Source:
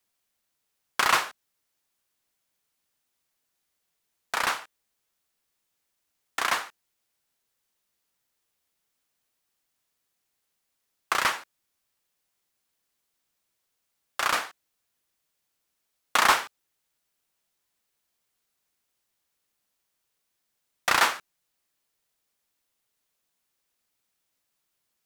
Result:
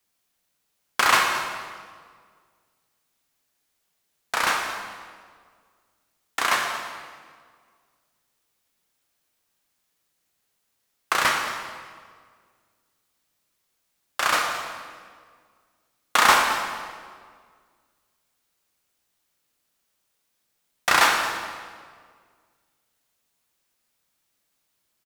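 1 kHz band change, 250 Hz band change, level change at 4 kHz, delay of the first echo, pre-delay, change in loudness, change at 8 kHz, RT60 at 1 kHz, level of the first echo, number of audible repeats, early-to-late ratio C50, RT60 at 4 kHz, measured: +5.0 dB, +5.5 dB, +4.5 dB, 222 ms, 14 ms, +2.5 dB, +4.5 dB, 1.7 s, -16.0 dB, 1, 3.5 dB, 1.4 s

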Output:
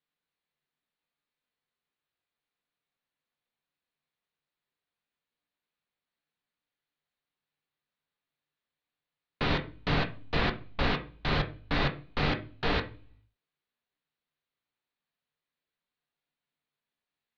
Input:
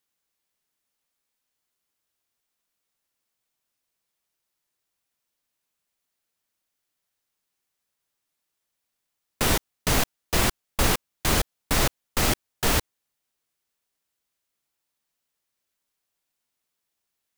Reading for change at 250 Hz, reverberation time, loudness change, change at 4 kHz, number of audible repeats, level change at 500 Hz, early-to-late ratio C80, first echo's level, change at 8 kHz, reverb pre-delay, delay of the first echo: -3.0 dB, 0.40 s, -6.5 dB, -6.5 dB, no echo, -4.0 dB, 20.0 dB, no echo, under -30 dB, 3 ms, no echo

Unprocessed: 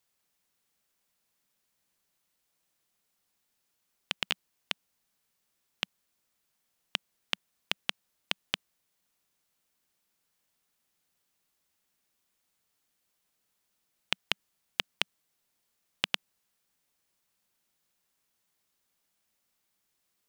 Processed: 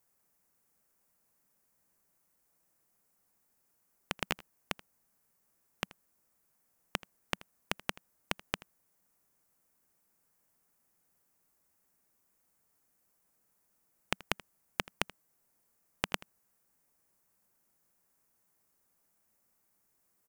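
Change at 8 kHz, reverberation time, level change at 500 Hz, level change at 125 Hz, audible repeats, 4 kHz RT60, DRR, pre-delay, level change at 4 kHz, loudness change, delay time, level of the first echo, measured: +0.5 dB, no reverb, +4.5 dB, +5.0 dB, 1, no reverb, no reverb, no reverb, -8.0 dB, -4.0 dB, 81 ms, -20.5 dB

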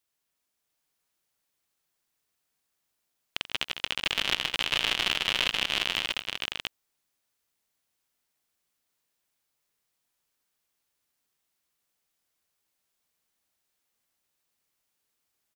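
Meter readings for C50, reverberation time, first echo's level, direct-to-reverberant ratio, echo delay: no reverb, no reverb, -15.0 dB, no reverb, 87 ms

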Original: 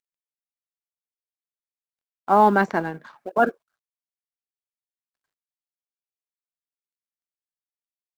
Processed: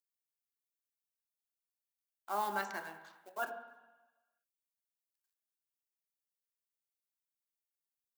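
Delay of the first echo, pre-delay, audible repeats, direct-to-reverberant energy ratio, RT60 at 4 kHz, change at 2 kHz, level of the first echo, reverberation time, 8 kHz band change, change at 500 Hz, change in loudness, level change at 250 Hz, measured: no echo, 3 ms, no echo, 5.5 dB, 1.2 s, -14.5 dB, no echo, 1.2 s, no reading, -21.5 dB, -19.0 dB, -27.5 dB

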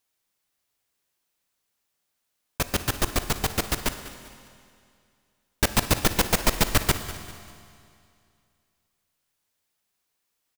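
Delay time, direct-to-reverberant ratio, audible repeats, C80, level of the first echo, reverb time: 197 ms, 9.0 dB, 3, 10.0 dB, -16.0 dB, 2.4 s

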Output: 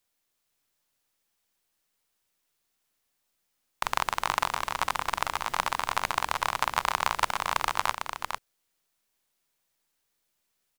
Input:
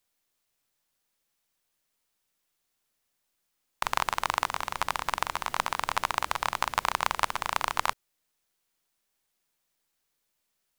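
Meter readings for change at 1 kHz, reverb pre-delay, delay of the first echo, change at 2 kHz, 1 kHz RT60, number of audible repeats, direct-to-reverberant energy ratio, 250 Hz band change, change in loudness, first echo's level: +1.0 dB, no reverb, 451 ms, +1.0 dB, no reverb, 1, no reverb, +1.0 dB, +0.5 dB, -6.0 dB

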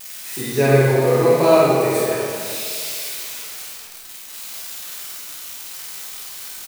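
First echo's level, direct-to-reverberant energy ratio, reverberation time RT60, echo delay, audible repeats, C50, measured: -2.5 dB, -8.0 dB, 2.2 s, 50 ms, 1, -4.5 dB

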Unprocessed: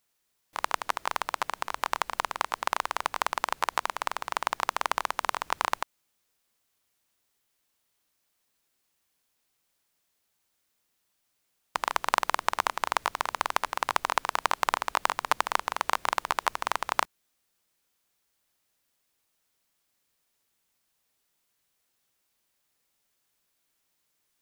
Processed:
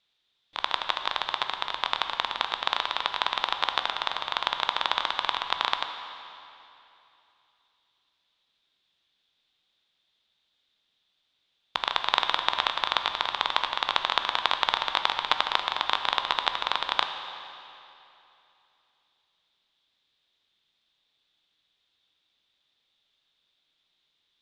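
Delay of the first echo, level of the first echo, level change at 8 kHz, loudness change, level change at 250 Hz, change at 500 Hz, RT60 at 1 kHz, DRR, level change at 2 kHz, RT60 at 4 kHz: no echo, no echo, -10.5 dB, +2.5 dB, -1.0 dB, -1.0 dB, 2.8 s, 6.5 dB, +1.5 dB, 2.6 s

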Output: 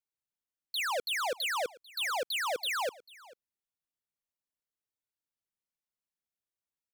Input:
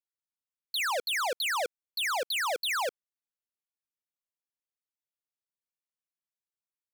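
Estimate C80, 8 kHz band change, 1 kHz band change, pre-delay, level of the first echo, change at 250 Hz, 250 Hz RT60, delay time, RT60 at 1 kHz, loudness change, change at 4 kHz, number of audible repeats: no reverb, -3.5 dB, -2.5 dB, no reverb, -21.5 dB, +0.5 dB, no reverb, 443 ms, no reverb, -2.5 dB, -2.5 dB, 1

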